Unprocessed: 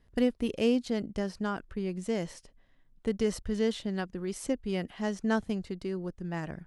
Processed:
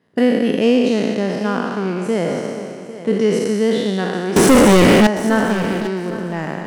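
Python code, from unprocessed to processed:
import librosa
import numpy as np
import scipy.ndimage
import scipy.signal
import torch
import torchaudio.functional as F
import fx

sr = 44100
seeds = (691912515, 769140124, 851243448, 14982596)

p1 = fx.spec_trails(x, sr, decay_s=2.43)
p2 = np.sign(p1) * np.maximum(np.abs(p1) - 10.0 ** (-44.5 / 20.0), 0.0)
p3 = p1 + (p2 * 10.0 ** (-5.0 / 20.0))
p4 = scipy.signal.sosfilt(scipy.signal.butter(4, 150.0, 'highpass', fs=sr, output='sos'), p3)
p5 = fx.high_shelf(p4, sr, hz=3300.0, db=-8.5)
p6 = fx.leveller(p5, sr, passes=5, at=(4.36, 5.07))
p7 = p6 + fx.echo_feedback(p6, sr, ms=803, feedback_pct=17, wet_db=-15, dry=0)
y = p7 * 10.0 ** (7.0 / 20.0)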